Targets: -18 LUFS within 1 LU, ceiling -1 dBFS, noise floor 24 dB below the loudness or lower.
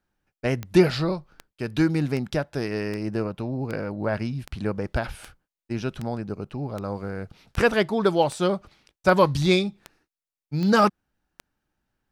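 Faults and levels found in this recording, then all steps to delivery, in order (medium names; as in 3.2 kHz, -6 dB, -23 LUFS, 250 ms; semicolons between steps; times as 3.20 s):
clicks found 15; loudness -25.0 LUFS; peak level -5.0 dBFS; loudness target -18.0 LUFS
-> de-click; trim +7 dB; peak limiter -1 dBFS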